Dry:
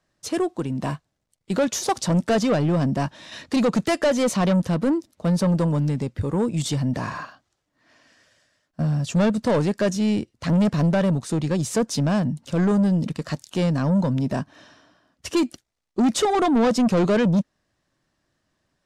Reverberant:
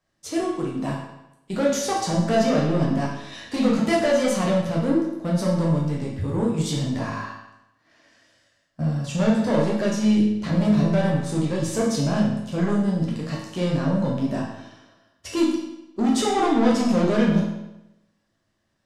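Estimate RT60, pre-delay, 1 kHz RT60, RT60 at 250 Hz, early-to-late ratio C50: 0.90 s, 9 ms, 0.90 s, 0.90 s, 2.5 dB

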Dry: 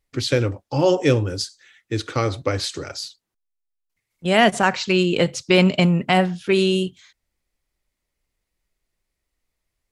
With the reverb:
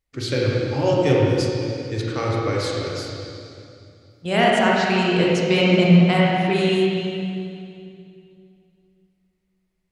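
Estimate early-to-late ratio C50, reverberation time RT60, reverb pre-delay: -3.0 dB, 2.5 s, 25 ms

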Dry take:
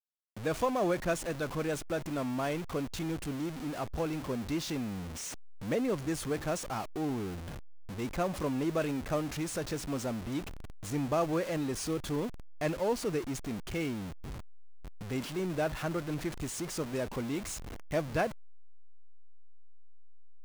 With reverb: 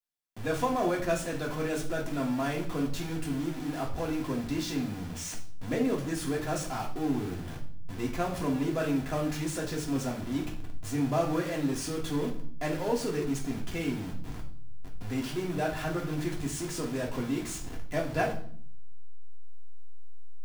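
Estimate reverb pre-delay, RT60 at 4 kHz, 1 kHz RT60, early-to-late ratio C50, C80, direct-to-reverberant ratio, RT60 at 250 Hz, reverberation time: 3 ms, 0.55 s, 0.50 s, 9.0 dB, 13.5 dB, -2.5 dB, 0.95 s, 0.55 s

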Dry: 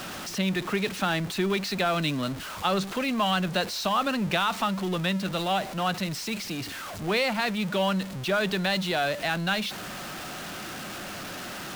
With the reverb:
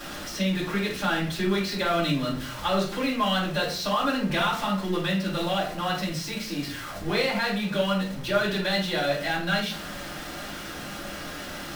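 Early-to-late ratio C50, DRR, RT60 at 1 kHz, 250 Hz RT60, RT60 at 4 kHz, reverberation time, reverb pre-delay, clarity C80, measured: 6.0 dB, -6.5 dB, 0.40 s, 0.70 s, 0.30 s, 0.45 s, 3 ms, 11.5 dB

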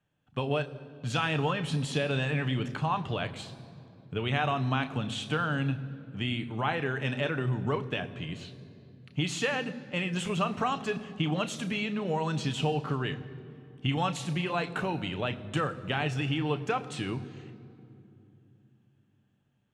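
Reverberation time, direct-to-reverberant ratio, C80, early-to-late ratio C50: 2.8 s, 9.0 dB, 16.0 dB, 15.5 dB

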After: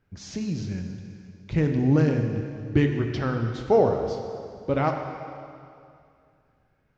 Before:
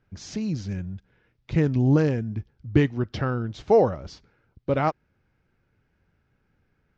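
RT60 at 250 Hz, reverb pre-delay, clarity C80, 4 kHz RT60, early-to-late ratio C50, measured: 2.4 s, 4 ms, 6.0 dB, 2.3 s, 5.0 dB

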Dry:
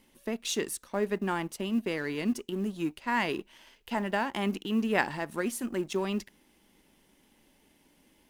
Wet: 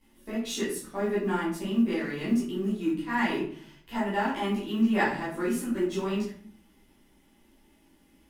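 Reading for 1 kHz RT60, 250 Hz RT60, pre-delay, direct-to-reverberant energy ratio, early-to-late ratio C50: 0.50 s, 0.80 s, 10 ms, -12.5 dB, 3.5 dB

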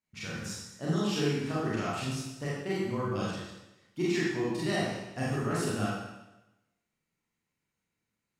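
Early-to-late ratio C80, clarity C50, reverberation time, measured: 1.5 dB, -1.5 dB, 0.95 s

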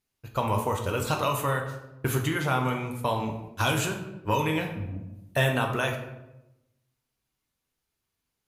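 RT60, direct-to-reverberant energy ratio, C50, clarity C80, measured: 0.95 s, 2.0 dB, 7.0 dB, 9.5 dB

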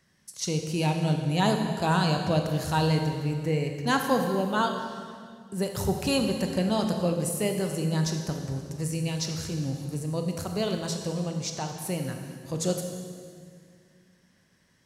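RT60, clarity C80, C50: 2.1 s, 6.5 dB, 5.0 dB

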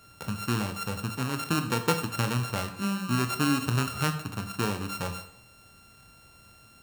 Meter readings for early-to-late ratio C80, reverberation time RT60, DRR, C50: 13.0 dB, 0.70 s, 7.0 dB, 10.5 dB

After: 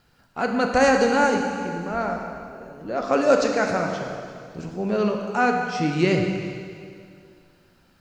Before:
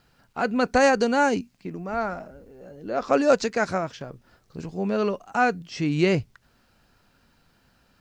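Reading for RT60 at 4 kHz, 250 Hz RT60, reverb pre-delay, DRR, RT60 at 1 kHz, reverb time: 2.2 s, 2.3 s, 7 ms, 2.0 dB, 2.3 s, 2.3 s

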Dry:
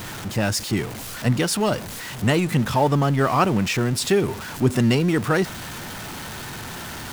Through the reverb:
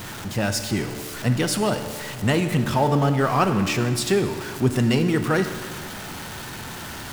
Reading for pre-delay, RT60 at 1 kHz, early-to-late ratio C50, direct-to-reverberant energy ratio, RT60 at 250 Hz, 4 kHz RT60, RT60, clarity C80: 13 ms, 1.9 s, 9.0 dB, 7.5 dB, 1.9 s, 1.7 s, 1.9 s, 10.0 dB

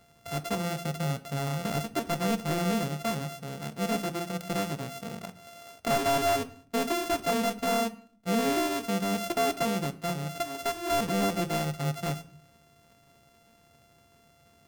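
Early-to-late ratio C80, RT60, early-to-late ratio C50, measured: 20.5 dB, 0.50 s, 17.0 dB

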